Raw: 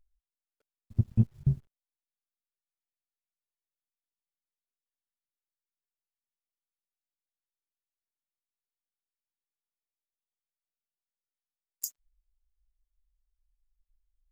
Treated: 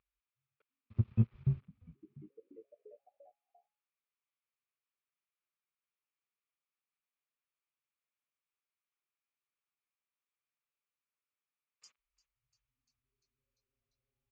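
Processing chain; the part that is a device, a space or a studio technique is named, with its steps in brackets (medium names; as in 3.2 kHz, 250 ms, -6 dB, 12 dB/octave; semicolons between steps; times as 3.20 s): frequency-shifting delay pedal into a guitar cabinet (frequency-shifting echo 346 ms, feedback 64%, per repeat -140 Hz, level -19 dB; cabinet simulation 110–3500 Hz, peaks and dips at 170 Hz -10 dB, 280 Hz -9 dB, 690 Hz -6 dB, 1.2 kHz +8 dB, 2.4 kHz +8 dB)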